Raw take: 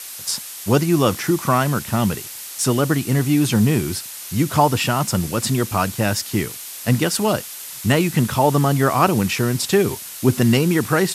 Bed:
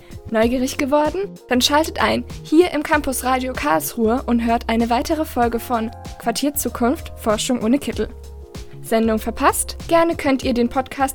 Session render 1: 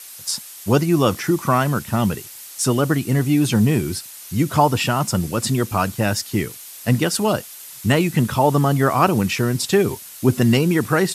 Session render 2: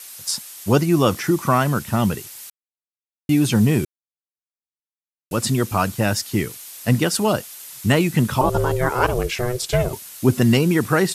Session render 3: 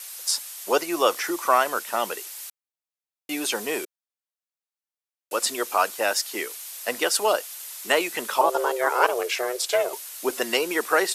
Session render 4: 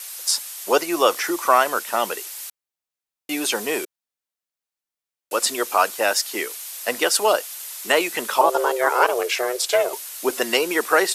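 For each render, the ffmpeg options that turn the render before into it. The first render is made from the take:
-af "afftdn=nr=6:nf=-34"
-filter_complex "[0:a]asettb=1/sr,asplit=3[a][b][c];[a]atrim=end=8.414[d];[b]atrim=start=8.41:end=9.93,asetpts=PTS-STARTPTS,afade=t=in:d=0.004:c=qsin,afade=t=out:st=1.516:d=0.004:c=qsin,aeval=exprs='val(0)*sin(2*PI*250*n/s)':c=same[e];[c]atrim=start=9.926[f];[d][e]acrossfade=d=0.004:c1=hsin:c2=qsin[g];[g][f]acrossfade=d=0.004:c1=qsin:c2=hsin,asplit=5[h][i][j][k][l];[h]atrim=end=2.5,asetpts=PTS-STARTPTS,afade=t=out:st=2.496:d=0.004:c=hsin[m];[i]atrim=start=2.5:end=3.29,asetpts=PTS-STARTPTS,volume=0[n];[j]atrim=start=3.29:end=3.85,asetpts=PTS-STARTPTS,afade=t=in:d=0.004:c=hsin,afade=t=out:st=0.556:d=0.004:c=hsin[o];[k]atrim=start=3.85:end=5.31,asetpts=PTS-STARTPTS,volume=0[p];[l]atrim=start=5.31,asetpts=PTS-STARTPTS,afade=t=in:d=0.004:c=hsin[q];[m][n][o][p][q]concat=n=5:v=0:a=1"
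-af "highpass=f=440:w=0.5412,highpass=f=440:w=1.3066"
-af "volume=3.5dB,alimiter=limit=-3dB:level=0:latency=1"

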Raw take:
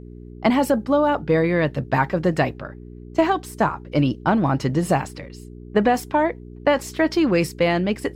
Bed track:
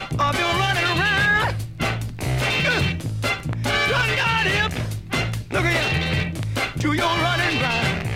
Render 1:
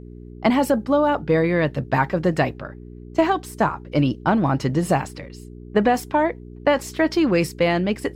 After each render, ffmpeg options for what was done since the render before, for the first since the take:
-af anull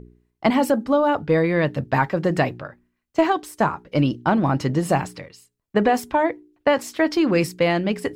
-af "bandreject=f=60:t=h:w=4,bandreject=f=120:t=h:w=4,bandreject=f=180:t=h:w=4,bandreject=f=240:t=h:w=4,bandreject=f=300:t=h:w=4,bandreject=f=360:t=h:w=4,bandreject=f=420:t=h:w=4"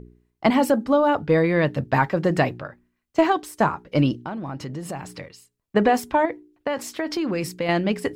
-filter_complex "[0:a]asettb=1/sr,asplit=3[a][b][c];[a]atrim=end=4.254[d];[b]atrim=start=4.25:end=5.16,asetpts=PTS-STARTPTS,afade=t=in:d=0.004:c=qsin,afade=t=out:st=0.906:d=0.004:c=qsin,acompressor=threshold=-32dB:ratio=3:attack=3.2:release=140:knee=1:detection=peak[e];[c]atrim=start=5.156[f];[d][e]acrossfade=d=0.004:c1=hsin:c2=qsin[g];[g][f]acrossfade=d=0.004:c1=qsin:c2=hsin,asettb=1/sr,asplit=3[h][i][j];[h]atrim=end=6.254[k];[i]atrim=start=6.25:end=7.69,asetpts=PTS-STARTPTS,afade=t=in:d=0.004:c=qsin,afade=t=out:st=1.436:d=0.004:c=qsin,acompressor=threshold=-22dB:ratio=4:attack=3.2:release=140:knee=1:detection=peak[l];[j]atrim=start=7.686[m];[k][l]acrossfade=d=0.004:c1=hsin:c2=qsin[n];[n][m]acrossfade=d=0.004:c1=qsin:c2=hsin"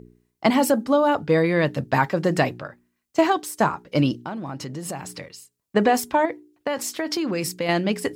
-af "highpass=f=150:p=1,bass=f=250:g=2,treble=f=4k:g=7"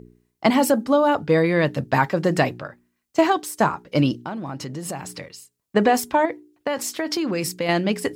-af "volume=1dB"

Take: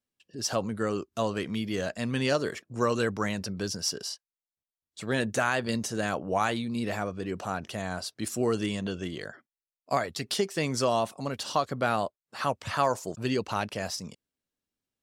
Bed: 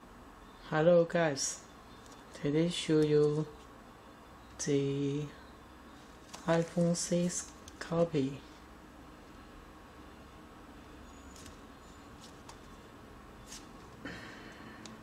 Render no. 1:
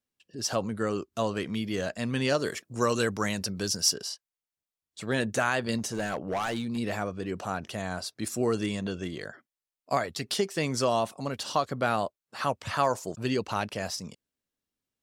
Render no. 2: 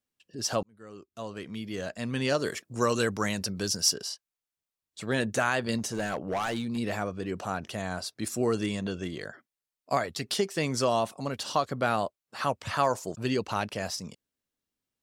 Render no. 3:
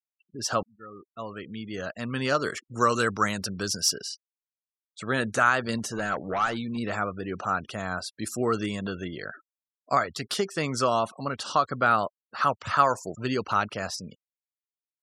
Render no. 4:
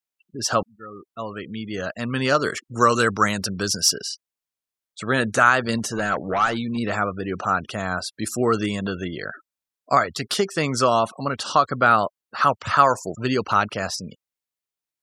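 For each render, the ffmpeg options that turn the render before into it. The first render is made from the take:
-filter_complex "[0:a]asettb=1/sr,asplit=3[a][b][c];[a]atrim=end=2.424[d];[b]atrim=start=2.42:end=3.94,asetpts=PTS-STARTPTS,afade=t=in:d=0.004:c=qsin,afade=t=out:st=1.516:d=0.004:c=qsin,highshelf=f=4.4k:g=9[e];[c]atrim=start=3.936[f];[d][e]acrossfade=d=0.004:c1=hsin:c2=qsin[g];[g][f]acrossfade=d=0.004:c1=qsin:c2=hsin,asettb=1/sr,asplit=3[h][i][j];[h]atrim=end=5.784[k];[i]atrim=start=5.78:end=6.78,asetpts=PTS-STARTPTS,afade=t=in:d=0.004:c=qsin,afade=t=out:st=0.996:d=0.004:c=qsin,asoftclip=type=hard:threshold=-25.5dB[l];[j]atrim=start=6.776[m];[k][l]acrossfade=d=0.004:c1=hsin:c2=qsin[n];[n][m]acrossfade=d=0.004:c1=qsin:c2=hsin,asettb=1/sr,asplit=3[o][p][q];[o]atrim=end=8.034[r];[p]atrim=start=8.03:end=9.23,asetpts=PTS-STARTPTS,afade=t=in:d=0.004:c=qsin,afade=t=out:st=1.196:d=0.004:c=qsin,bandreject=f=3k:w=12[s];[q]atrim=start=9.226[t];[r][s]acrossfade=d=0.004:c1=hsin:c2=qsin[u];[u][t]acrossfade=d=0.004:c1=qsin:c2=hsin"
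-filter_complex "[0:a]asplit=2[a][b];[a]atrim=end=0.63,asetpts=PTS-STARTPTS,afade=t=out:st=0.626:d=0.004:c=hsin[c];[b]atrim=start=0.63,asetpts=PTS-STARTPTS,afade=t=in:d=1.85[d];[c][d]concat=n=2:v=0:a=1"
-af "afftfilt=real='re*gte(hypot(re,im),0.00562)':imag='im*gte(hypot(re,im),0.00562)':win_size=1024:overlap=0.75,equalizer=f=1.3k:w=3:g=11.5"
-af "volume=5.5dB,alimiter=limit=-2dB:level=0:latency=1"

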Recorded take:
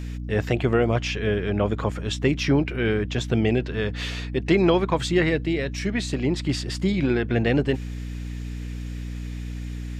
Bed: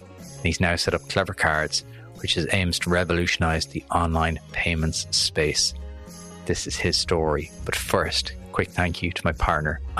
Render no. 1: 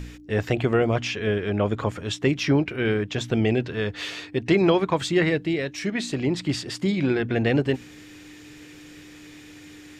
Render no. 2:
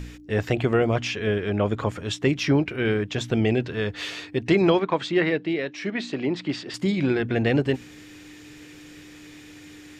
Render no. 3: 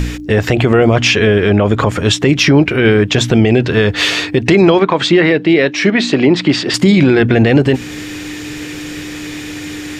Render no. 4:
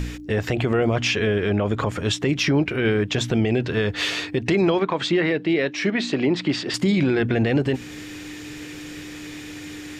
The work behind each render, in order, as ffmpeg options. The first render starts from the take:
-af "bandreject=f=60:t=h:w=4,bandreject=f=120:t=h:w=4,bandreject=f=180:t=h:w=4,bandreject=f=240:t=h:w=4"
-filter_complex "[0:a]asettb=1/sr,asplit=3[a][b][c];[a]atrim=end=4.794[d];[b]atrim=start=4.79:end=6.74,asetpts=PTS-STARTPTS,afade=t=in:d=0.004:c=qsin,afade=t=out:st=1.946:d=0.004:c=qsin,highpass=200,lowpass=4k[e];[c]atrim=start=6.736[f];[d][e]acrossfade=d=0.004:c1=hsin:c2=qsin[g];[g][f]acrossfade=d=0.004:c1=qsin:c2=hsin"
-filter_complex "[0:a]asplit=2[a][b];[b]acompressor=threshold=-29dB:ratio=6,volume=-2.5dB[c];[a][c]amix=inputs=2:normalize=0,alimiter=level_in=14.5dB:limit=-1dB:release=50:level=0:latency=1"
-af "volume=-10.5dB"

